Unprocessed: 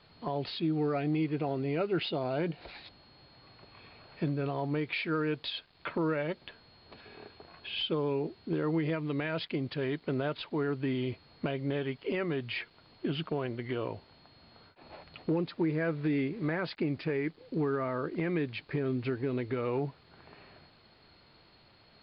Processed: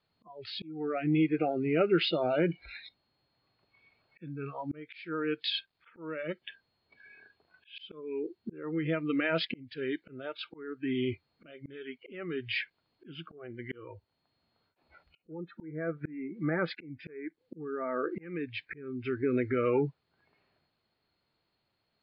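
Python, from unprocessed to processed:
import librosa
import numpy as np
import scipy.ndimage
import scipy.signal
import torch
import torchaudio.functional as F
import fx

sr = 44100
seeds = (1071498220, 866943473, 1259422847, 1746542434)

y = fx.env_lowpass_down(x, sr, base_hz=1700.0, full_db=-27.0, at=(13.33, 18.21), fade=0.02)
y = fx.noise_reduce_blind(y, sr, reduce_db=24)
y = fx.low_shelf(y, sr, hz=62.0, db=-4.5)
y = fx.auto_swell(y, sr, attack_ms=611.0)
y = F.gain(torch.from_numpy(y), 5.5).numpy()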